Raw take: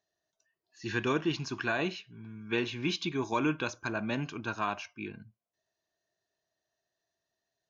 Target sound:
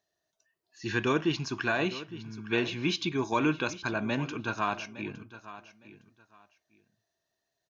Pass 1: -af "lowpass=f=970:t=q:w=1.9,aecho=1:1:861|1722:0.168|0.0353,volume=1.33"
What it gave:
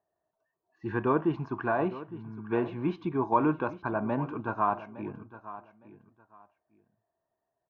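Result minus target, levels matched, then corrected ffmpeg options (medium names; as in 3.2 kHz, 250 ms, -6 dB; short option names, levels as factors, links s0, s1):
1 kHz band +4.0 dB
-af "aecho=1:1:861|1722:0.168|0.0353,volume=1.33"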